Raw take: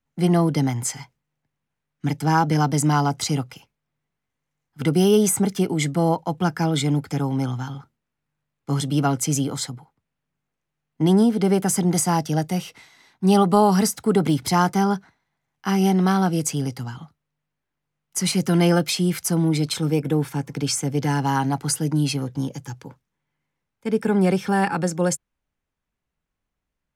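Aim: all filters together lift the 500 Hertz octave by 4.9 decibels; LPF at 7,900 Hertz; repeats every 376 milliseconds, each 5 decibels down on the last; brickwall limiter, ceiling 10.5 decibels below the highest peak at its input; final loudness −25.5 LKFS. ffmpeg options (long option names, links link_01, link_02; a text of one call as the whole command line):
ffmpeg -i in.wav -af "lowpass=7900,equalizer=frequency=500:width_type=o:gain=6.5,alimiter=limit=-11.5dB:level=0:latency=1,aecho=1:1:376|752|1128|1504|1880|2256|2632:0.562|0.315|0.176|0.0988|0.0553|0.031|0.0173,volume=-4dB" out.wav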